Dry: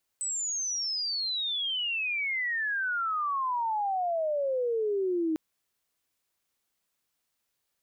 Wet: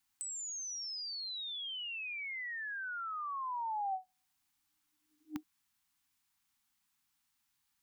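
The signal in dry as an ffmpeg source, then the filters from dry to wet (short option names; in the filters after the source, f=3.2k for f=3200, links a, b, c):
-f lavfi -i "aevalsrc='pow(10,(-29+4*t/5.15)/20)*sin(2*PI*8100*5.15/log(310/8100)*(exp(log(310/8100)*t/5.15)-1))':d=5.15:s=44100"
-filter_complex "[0:a]afftfilt=real='re*(1-between(b*sr/4096,310,750))':imag='im*(1-between(b*sr/4096,310,750))':win_size=4096:overlap=0.75,acrossover=split=600[a][b];[b]acompressor=threshold=-42dB:ratio=5[c];[a][c]amix=inputs=2:normalize=0"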